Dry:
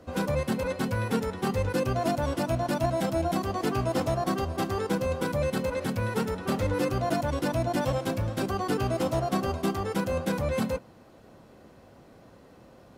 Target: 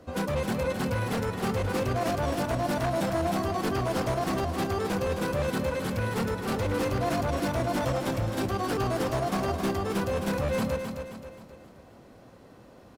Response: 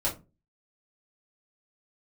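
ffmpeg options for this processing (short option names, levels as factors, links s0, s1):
-af "aeval=exprs='0.075*(abs(mod(val(0)/0.075+3,4)-2)-1)':c=same,aecho=1:1:265|530|795|1060|1325:0.447|0.197|0.0865|0.0381|0.0167"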